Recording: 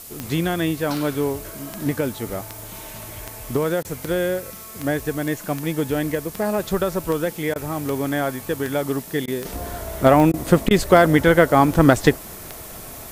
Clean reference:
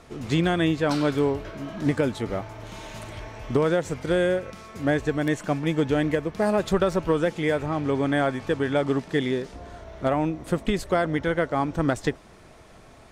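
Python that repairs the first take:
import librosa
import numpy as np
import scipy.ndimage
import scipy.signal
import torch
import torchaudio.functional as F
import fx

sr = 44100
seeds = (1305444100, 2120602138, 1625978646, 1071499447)

y = fx.fix_declick_ar(x, sr, threshold=10.0)
y = fx.fix_interpolate(y, sr, at_s=(3.83, 7.54, 9.26, 10.32, 10.69), length_ms=16.0)
y = fx.noise_reduce(y, sr, print_start_s=12.19, print_end_s=12.69, reduce_db=7.0)
y = fx.gain(y, sr, db=fx.steps((0.0, 0.0), (9.45, -10.0)))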